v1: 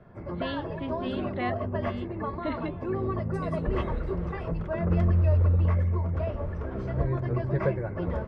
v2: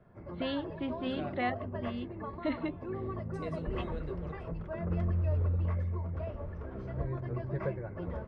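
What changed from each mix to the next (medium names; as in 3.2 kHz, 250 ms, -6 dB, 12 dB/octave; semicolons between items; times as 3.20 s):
background -8.0 dB; master: add distance through air 50 m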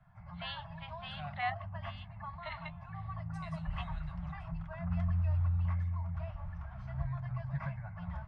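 master: add elliptic band-stop 170–740 Hz, stop band 40 dB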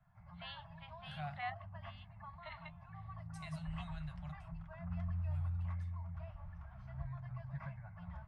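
first voice -7.0 dB; second voice: remove distance through air 57 m; background -7.5 dB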